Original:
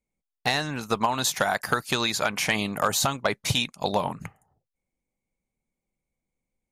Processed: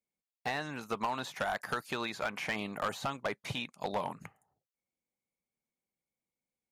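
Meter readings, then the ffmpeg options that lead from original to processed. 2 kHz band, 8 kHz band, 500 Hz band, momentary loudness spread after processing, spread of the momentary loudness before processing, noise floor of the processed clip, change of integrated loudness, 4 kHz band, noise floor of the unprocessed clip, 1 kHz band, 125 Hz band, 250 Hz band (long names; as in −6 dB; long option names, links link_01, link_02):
−9.5 dB, −20.5 dB, −9.0 dB, 4 LU, 5 LU, below −85 dBFS, −11.0 dB, −14.5 dB, below −85 dBFS, −9.0 dB, −12.5 dB, −10.0 dB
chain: -filter_complex "[0:a]acrossover=split=2900[link_01][link_02];[link_02]acompressor=threshold=-43dB:ratio=4:attack=1:release=60[link_03];[link_01][link_03]amix=inputs=2:normalize=0,highpass=frequency=220:poles=1,asoftclip=type=hard:threshold=-19.5dB,volume=-7dB"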